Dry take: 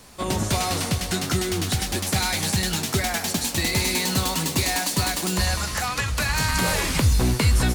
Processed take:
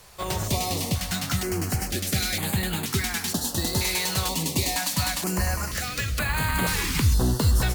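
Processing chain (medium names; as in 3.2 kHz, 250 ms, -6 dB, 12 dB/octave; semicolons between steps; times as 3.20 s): careless resampling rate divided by 2×, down none, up hold; step-sequenced notch 2.1 Hz 250–5600 Hz; trim -1.5 dB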